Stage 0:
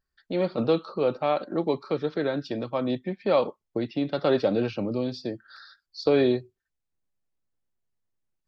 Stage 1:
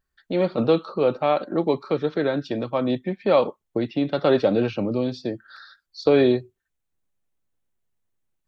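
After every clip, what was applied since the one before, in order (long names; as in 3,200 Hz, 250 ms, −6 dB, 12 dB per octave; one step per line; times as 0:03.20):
parametric band 4,900 Hz −7 dB 0.3 octaves
level +4 dB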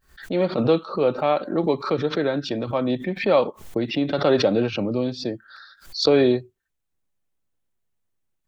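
background raised ahead of every attack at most 140 dB per second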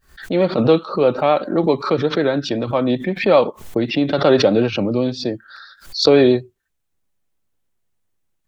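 pitch vibrato 7.8 Hz 31 cents
level +5 dB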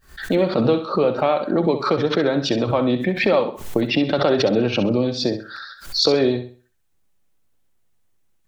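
downward compressor 3 to 1, threshold −21 dBFS, peak gain reduction 10.5 dB
on a send: flutter between parallel walls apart 11.2 metres, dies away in 0.38 s
on the sum: level +4 dB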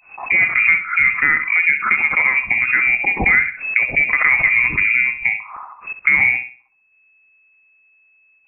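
voice inversion scrambler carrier 2,600 Hz
level +3 dB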